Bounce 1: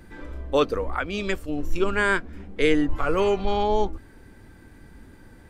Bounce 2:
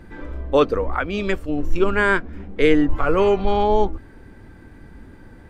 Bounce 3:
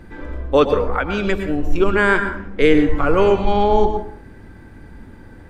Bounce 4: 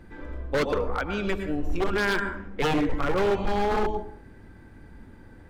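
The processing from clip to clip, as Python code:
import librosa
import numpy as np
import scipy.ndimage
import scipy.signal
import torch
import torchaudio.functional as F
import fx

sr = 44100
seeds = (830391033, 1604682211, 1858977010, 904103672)

y1 = fx.high_shelf(x, sr, hz=4000.0, db=-11.0)
y1 = F.gain(torch.from_numpy(y1), 5.0).numpy()
y2 = fx.rev_plate(y1, sr, seeds[0], rt60_s=0.57, hf_ratio=0.55, predelay_ms=95, drr_db=7.5)
y2 = F.gain(torch.from_numpy(y2), 2.0).numpy()
y3 = 10.0 ** (-10.5 / 20.0) * (np.abs((y2 / 10.0 ** (-10.5 / 20.0) + 3.0) % 4.0 - 2.0) - 1.0)
y3 = F.gain(torch.from_numpy(y3), -7.5).numpy()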